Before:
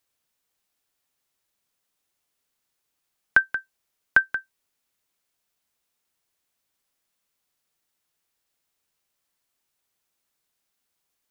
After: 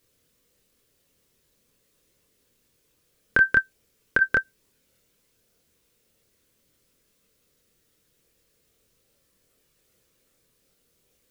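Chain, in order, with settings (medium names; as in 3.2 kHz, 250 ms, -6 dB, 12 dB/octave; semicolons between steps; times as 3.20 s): chorus voices 6, 0.42 Hz, delay 26 ms, depth 1 ms; compressor with a negative ratio -22 dBFS, ratio -0.5; resonant low shelf 600 Hz +7 dB, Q 3; trim +8 dB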